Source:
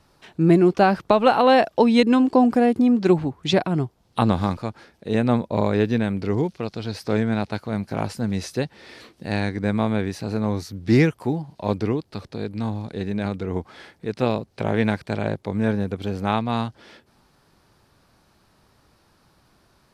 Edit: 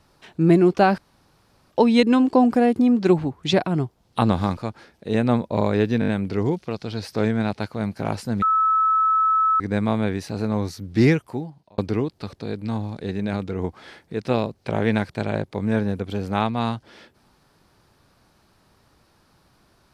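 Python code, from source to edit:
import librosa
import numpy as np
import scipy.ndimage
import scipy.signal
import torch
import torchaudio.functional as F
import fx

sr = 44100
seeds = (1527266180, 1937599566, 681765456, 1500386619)

y = fx.edit(x, sr, fx.room_tone_fill(start_s=0.98, length_s=0.73),
    fx.stutter(start_s=6.0, slice_s=0.02, count=5),
    fx.bleep(start_s=8.34, length_s=1.18, hz=1300.0, db=-15.5),
    fx.fade_out_span(start_s=10.99, length_s=0.71), tone=tone)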